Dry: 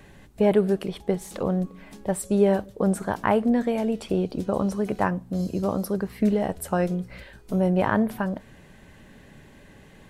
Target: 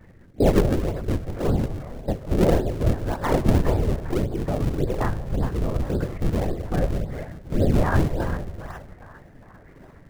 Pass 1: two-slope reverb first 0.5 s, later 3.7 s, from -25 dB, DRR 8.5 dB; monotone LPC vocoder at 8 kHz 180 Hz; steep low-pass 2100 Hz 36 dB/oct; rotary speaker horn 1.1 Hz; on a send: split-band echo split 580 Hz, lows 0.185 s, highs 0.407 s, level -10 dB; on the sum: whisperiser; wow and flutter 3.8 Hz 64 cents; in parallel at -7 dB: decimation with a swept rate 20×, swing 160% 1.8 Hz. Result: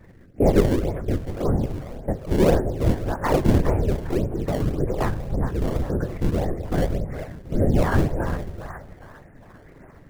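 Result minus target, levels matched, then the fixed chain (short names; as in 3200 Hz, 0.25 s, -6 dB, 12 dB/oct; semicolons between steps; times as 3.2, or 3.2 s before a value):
decimation with a swept rate: distortion -7 dB
two-slope reverb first 0.5 s, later 3.7 s, from -25 dB, DRR 8.5 dB; monotone LPC vocoder at 8 kHz 180 Hz; steep low-pass 2100 Hz 36 dB/oct; rotary speaker horn 1.1 Hz; on a send: split-band echo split 580 Hz, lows 0.185 s, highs 0.407 s, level -10 dB; on the sum: whisperiser; wow and flutter 3.8 Hz 64 cents; in parallel at -7 dB: decimation with a swept rate 50×, swing 160% 1.8 Hz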